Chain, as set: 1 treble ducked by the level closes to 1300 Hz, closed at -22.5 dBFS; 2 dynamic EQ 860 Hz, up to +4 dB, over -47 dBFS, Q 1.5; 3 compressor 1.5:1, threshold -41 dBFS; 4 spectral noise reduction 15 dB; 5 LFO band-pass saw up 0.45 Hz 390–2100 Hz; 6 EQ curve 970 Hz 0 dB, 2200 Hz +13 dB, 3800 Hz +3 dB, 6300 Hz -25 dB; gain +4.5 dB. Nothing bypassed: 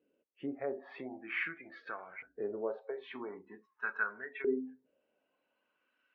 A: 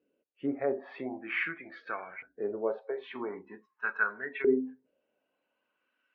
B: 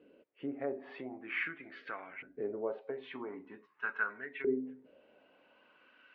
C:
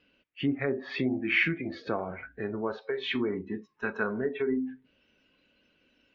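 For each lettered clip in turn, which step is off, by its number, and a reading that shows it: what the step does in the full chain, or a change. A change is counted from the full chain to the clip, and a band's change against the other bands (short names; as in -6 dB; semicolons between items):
3, mean gain reduction 4.0 dB; 4, 125 Hz band +2.0 dB; 5, 125 Hz band +15.0 dB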